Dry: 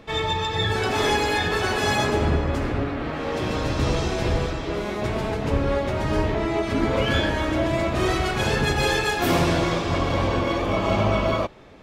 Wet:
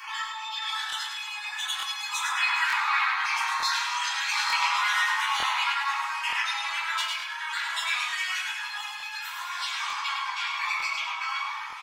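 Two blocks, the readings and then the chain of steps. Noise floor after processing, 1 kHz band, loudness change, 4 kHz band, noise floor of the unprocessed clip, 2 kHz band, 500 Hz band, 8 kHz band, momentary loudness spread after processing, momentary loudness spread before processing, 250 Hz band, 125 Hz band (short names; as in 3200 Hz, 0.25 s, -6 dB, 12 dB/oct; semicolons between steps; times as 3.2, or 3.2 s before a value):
-37 dBFS, -2.0 dB, -4.0 dB, +0.5 dB, -29 dBFS, +1.0 dB, -34.5 dB, 0.0 dB, 9 LU, 6 LU, under -40 dB, under -40 dB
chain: random spectral dropouts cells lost 36%; steep high-pass 860 Hz 96 dB/oct; negative-ratio compressor -41 dBFS, ratio -1; flange 0.42 Hz, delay 2.7 ms, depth 2 ms, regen +51%; feedback echo 0.104 s, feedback 41%, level -5 dB; shoebox room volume 64 m³, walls mixed, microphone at 1.7 m; crackling interface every 0.90 s, samples 1024, repeat, from 0.88; gain +5 dB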